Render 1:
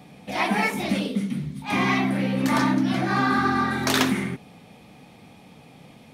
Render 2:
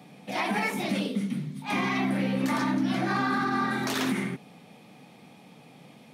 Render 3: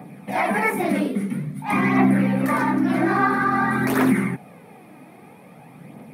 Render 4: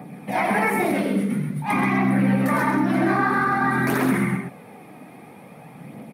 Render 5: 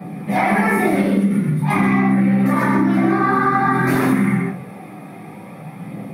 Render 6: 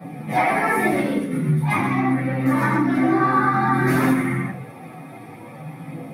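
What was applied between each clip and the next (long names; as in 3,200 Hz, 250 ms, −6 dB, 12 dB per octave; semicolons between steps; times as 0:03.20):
high-pass filter 130 Hz 24 dB per octave; brickwall limiter −15.5 dBFS, peak gain reduction 10.5 dB; level −2.5 dB
phase shifter 0.5 Hz, delay 3.3 ms, feedback 42%; flat-topped bell 4,600 Hz −13.5 dB; level +7 dB
brickwall limiter −14 dBFS, peak gain reduction 7.5 dB; loudspeakers that aren't time-aligned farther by 31 metres −11 dB, 45 metres −6 dB; level +1 dB
convolution reverb RT60 0.30 s, pre-delay 3 ms, DRR −9.5 dB; downward compressor, threshold −9 dBFS, peak gain reduction 7.5 dB; level −3.5 dB
multi-voice chorus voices 4, 0.38 Hz, delay 11 ms, depth 3.4 ms; notch comb filter 200 Hz; level +2.5 dB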